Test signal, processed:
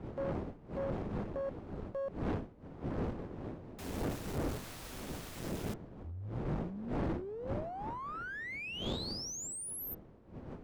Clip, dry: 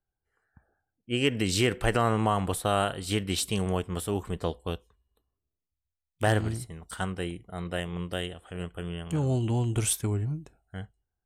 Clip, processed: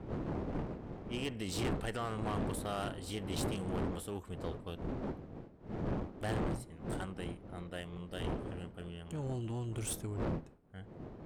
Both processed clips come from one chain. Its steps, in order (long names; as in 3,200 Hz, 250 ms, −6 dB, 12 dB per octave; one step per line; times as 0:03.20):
gain on one half-wave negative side −3 dB
wind on the microphone 340 Hz −30 dBFS
tube saturation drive 24 dB, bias 0.5
level −6.5 dB